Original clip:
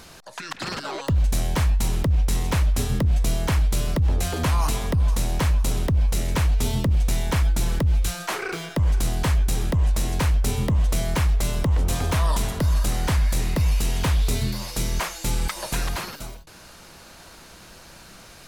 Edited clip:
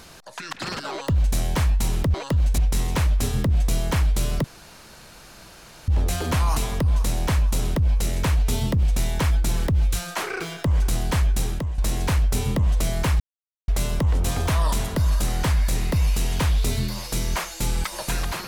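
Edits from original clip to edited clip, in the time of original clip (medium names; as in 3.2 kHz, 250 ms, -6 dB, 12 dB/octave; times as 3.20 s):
0.92–1.36 s: copy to 2.14 s
4.00 s: insert room tone 1.44 s
9.53–9.90 s: fade out, to -12.5 dB
11.32 s: insert silence 0.48 s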